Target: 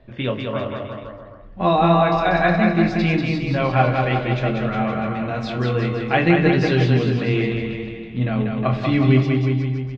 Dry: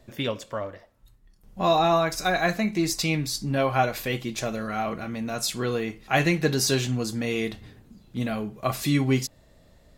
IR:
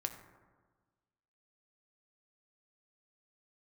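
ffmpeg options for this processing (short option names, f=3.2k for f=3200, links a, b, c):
-filter_complex "[0:a]lowpass=f=3.3k:w=0.5412,lowpass=f=3.3k:w=1.3066,aecho=1:1:190|361|514.9|653.4|778.1:0.631|0.398|0.251|0.158|0.1,asplit=2[a][b];[1:a]atrim=start_sample=2205,lowshelf=f=380:g=9,adelay=23[c];[b][c]afir=irnorm=-1:irlink=0,volume=-8dB[d];[a][d]amix=inputs=2:normalize=0,volume=3dB"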